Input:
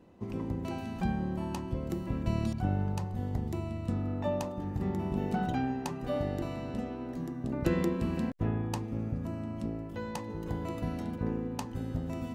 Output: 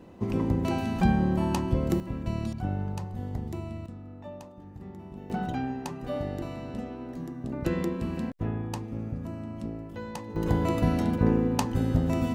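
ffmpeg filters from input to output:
-af "asetnsamples=n=441:p=0,asendcmd='2 volume volume -0.5dB;3.86 volume volume -10.5dB;5.3 volume volume 0dB;10.36 volume volume 10dB',volume=8.5dB"

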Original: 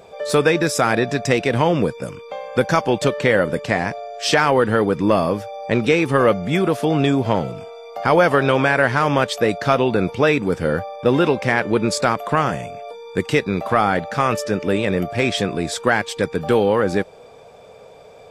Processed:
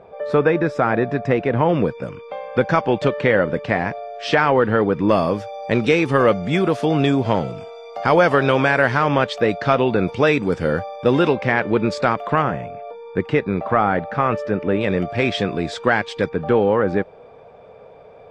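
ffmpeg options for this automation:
-af "asetnsamples=n=441:p=0,asendcmd='1.69 lowpass f 2900;5.09 lowpass f 6500;8.97 lowpass f 3900;10.08 lowpass f 6500;11.33 lowpass f 3300;12.42 lowpass f 2000;14.81 lowpass f 3900;16.29 lowpass f 2100',lowpass=1.7k"

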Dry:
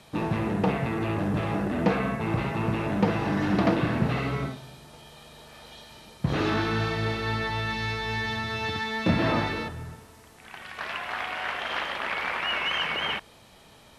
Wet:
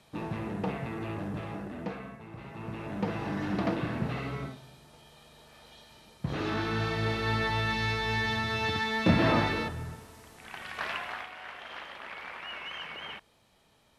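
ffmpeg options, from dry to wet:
-af "volume=11.5dB,afade=t=out:st=1.13:d=1.18:silence=0.266073,afade=t=in:st=2.31:d=0.91:silence=0.237137,afade=t=in:st=6.4:d=1.03:silence=0.446684,afade=t=out:st=10.85:d=0.45:silence=0.237137"

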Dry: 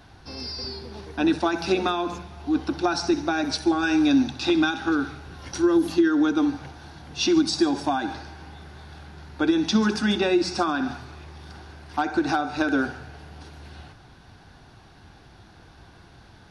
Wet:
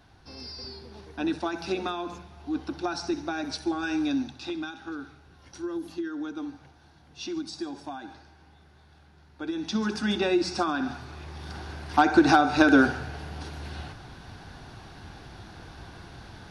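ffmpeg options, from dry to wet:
-af "volume=11.5dB,afade=t=out:st=3.97:d=0.63:silence=0.473151,afade=t=in:st=9.39:d=0.86:silence=0.298538,afade=t=in:st=10.92:d=0.81:silence=0.398107"

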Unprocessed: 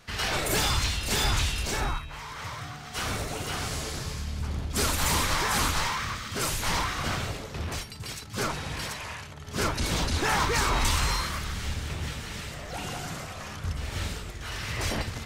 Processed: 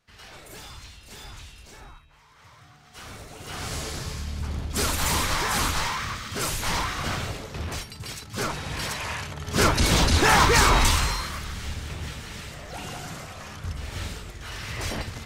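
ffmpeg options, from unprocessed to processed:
-af "volume=7.5dB,afade=t=in:st=2.29:d=1.09:silence=0.398107,afade=t=in:st=3.38:d=0.37:silence=0.316228,afade=t=in:st=8.64:d=0.61:silence=0.473151,afade=t=out:st=10.66:d=0.49:silence=0.375837"

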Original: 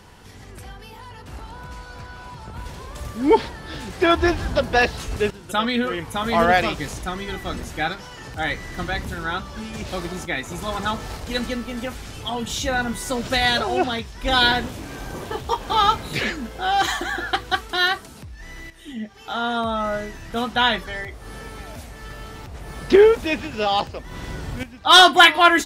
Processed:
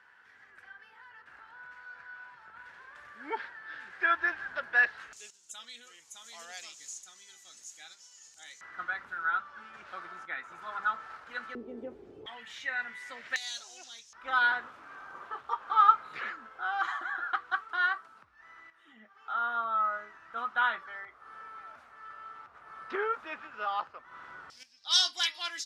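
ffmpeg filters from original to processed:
-af "asetnsamples=n=441:p=0,asendcmd='5.13 bandpass f 6800;8.61 bandpass f 1400;11.55 bandpass f 390;12.26 bandpass f 1900;13.36 bandpass f 6400;14.13 bandpass f 1300;24.5 bandpass f 5200',bandpass=f=1.6k:t=q:w=5.3:csg=0"

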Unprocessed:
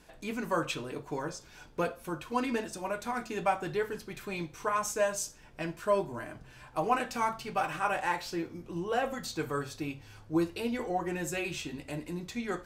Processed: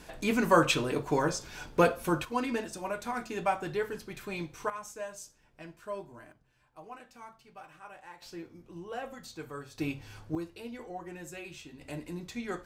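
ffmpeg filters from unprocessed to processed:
-af "asetnsamples=n=441:p=0,asendcmd='2.25 volume volume -0.5dB;4.7 volume volume -11dB;6.32 volume volume -18.5dB;8.22 volume volume -8.5dB;9.78 volume volume 3dB;10.35 volume volume -9.5dB;11.81 volume volume -2dB',volume=8dB"

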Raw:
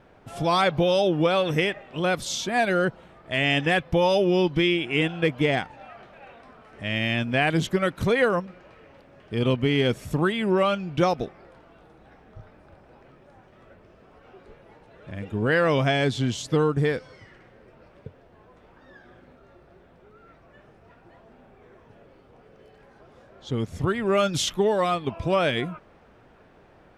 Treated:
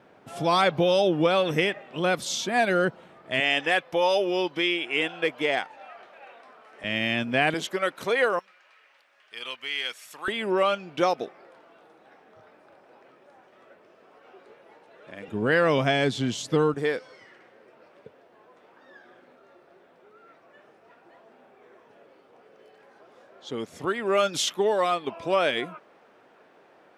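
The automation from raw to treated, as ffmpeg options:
-af "asetnsamples=n=441:p=0,asendcmd='3.4 highpass f 450;6.84 highpass f 180;7.54 highpass f 450;8.39 highpass f 1500;10.28 highpass f 350;15.28 highpass f 160;16.74 highpass f 330',highpass=170"

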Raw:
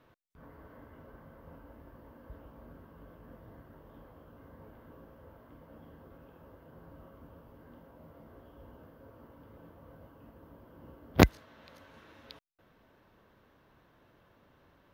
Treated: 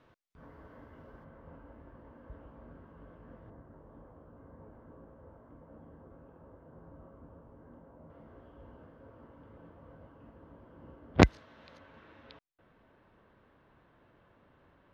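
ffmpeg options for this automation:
-af "asetnsamples=n=441:p=0,asendcmd='1.24 lowpass f 2700;3.5 lowpass f 1300;8.1 lowpass f 3000;11.22 lowpass f 5600;11.78 lowpass f 3000',lowpass=7.1k"

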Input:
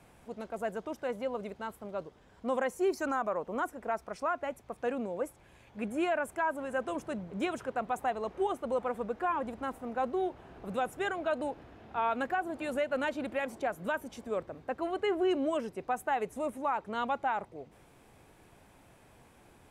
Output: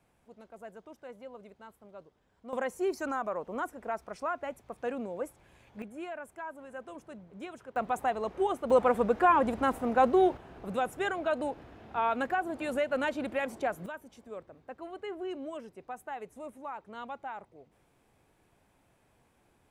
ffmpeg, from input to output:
-af "asetnsamples=n=441:p=0,asendcmd='2.53 volume volume -1.5dB;5.82 volume volume -10dB;7.76 volume volume 2dB;8.7 volume volume 8.5dB;10.37 volume volume 1.5dB;13.86 volume volume -9dB',volume=-11.5dB"

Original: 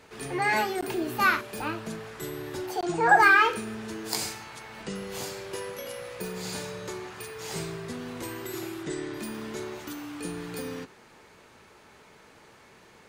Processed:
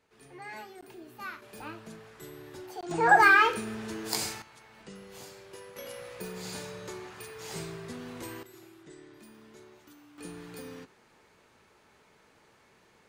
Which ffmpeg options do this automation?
-af "asetnsamples=n=441:p=0,asendcmd='1.42 volume volume -10dB;2.91 volume volume -1dB;4.42 volume volume -11.5dB;5.76 volume volume -4.5dB;8.43 volume volume -17dB;10.18 volume volume -8dB',volume=-18dB"

